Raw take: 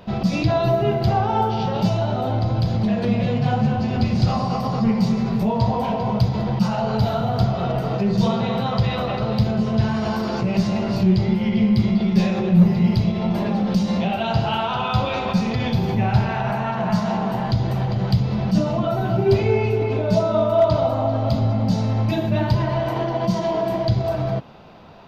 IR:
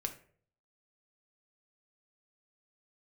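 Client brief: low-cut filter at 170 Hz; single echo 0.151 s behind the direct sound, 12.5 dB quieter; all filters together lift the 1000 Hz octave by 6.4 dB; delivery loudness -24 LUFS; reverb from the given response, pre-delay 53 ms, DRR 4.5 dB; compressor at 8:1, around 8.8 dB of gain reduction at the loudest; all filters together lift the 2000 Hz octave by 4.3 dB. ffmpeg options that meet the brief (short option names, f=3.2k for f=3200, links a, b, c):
-filter_complex "[0:a]highpass=170,equalizer=f=1k:t=o:g=8,equalizer=f=2k:t=o:g=3,acompressor=threshold=-18dB:ratio=8,aecho=1:1:151:0.237,asplit=2[a][b];[1:a]atrim=start_sample=2205,adelay=53[c];[b][c]afir=irnorm=-1:irlink=0,volume=-4.5dB[d];[a][d]amix=inputs=2:normalize=0,volume=-3dB"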